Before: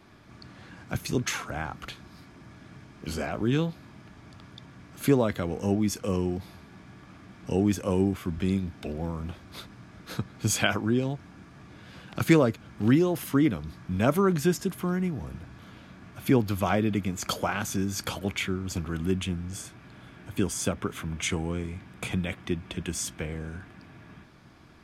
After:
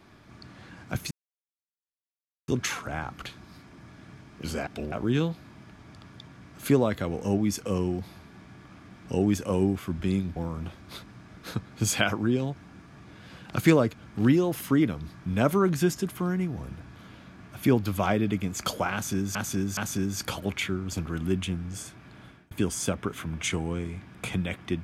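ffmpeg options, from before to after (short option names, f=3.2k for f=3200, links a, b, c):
-filter_complex "[0:a]asplit=8[a][b][c][d][e][f][g][h];[a]atrim=end=1.11,asetpts=PTS-STARTPTS,afade=t=out:st=1.106:d=0.004:c=hsin,apad=pad_dur=1.37[i];[b]atrim=start=1.11:end=3.302,asetpts=PTS-STARTPTS,afade=t=in:d=0.004:c=hsin[j];[c]atrim=start=8.738:end=8.992[k];[d]atrim=start=3.298:end=8.742[l];[e]atrim=start=8.988:end=17.982[m];[f]atrim=start=17.558:end=17.982[n];[g]atrim=start=17.558:end=20.3,asetpts=PTS-STARTPTS,afade=t=out:st=2.482:d=0.26[o];[h]atrim=start=20.3,asetpts=PTS-STARTPTS,afade=t=in:d=0.004:c=hsin[p];[i][j]concat=n=2:v=0:a=1[q];[q][k]acrossfade=d=0.004:c1=hsin:c2=hsin[r];[r][l]acrossfade=d=0.004:c1=hsin:c2=hsin[s];[s][m]acrossfade=d=0.004:c1=hsin:c2=hsin[t];[t][n]acrossfade=d=0.004:c1=hsin:c2=hsin[u];[o][p]concat=n=2:v=0:a=1[v];[u][v]acrossfade=d=0.004:c1=hsin:c2=hsin"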